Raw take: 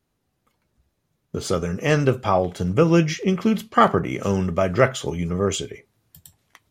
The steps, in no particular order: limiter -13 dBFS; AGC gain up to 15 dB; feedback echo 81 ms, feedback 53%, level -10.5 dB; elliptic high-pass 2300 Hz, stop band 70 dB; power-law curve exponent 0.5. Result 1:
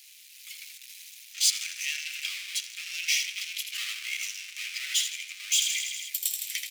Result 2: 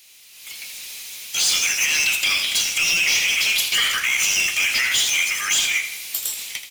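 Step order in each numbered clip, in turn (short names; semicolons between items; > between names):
feedback echo > AGC > limiter > power-law curve > elliptic high-pass; elliptic high-pass > power-law curve > AGC > limiter > feedback echo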